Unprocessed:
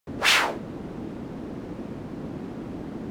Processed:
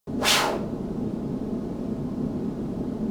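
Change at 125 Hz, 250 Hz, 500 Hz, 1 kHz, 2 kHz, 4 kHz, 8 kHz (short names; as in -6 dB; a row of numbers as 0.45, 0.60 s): +5.5, +6.5, +4.5, +0.5, -4.5, 0.0, +3.5 dB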